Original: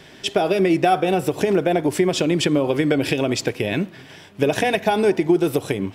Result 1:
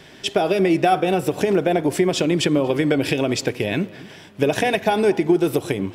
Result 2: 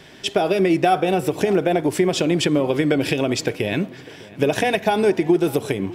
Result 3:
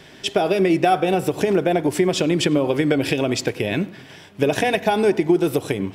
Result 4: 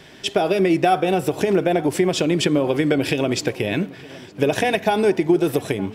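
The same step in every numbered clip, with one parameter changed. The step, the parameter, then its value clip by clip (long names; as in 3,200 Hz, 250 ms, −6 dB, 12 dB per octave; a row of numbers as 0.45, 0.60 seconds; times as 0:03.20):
feedback echo with a low-pass in the loop, delay time: 237, 601, 98, 912 milliseconds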